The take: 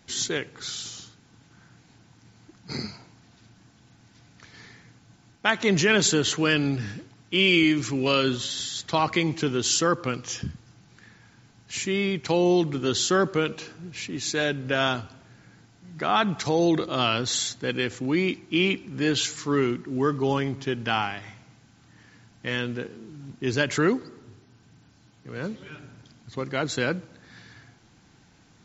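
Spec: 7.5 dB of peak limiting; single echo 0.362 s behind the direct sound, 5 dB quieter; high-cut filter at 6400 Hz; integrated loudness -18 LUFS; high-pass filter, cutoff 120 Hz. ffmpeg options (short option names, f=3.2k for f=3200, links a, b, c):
-af "highpass=120,lowpass=6.4k,alimiter=limit=-13dB:level=0:latency=1,aecho=1:1:362:0.562,volume=7.5dB"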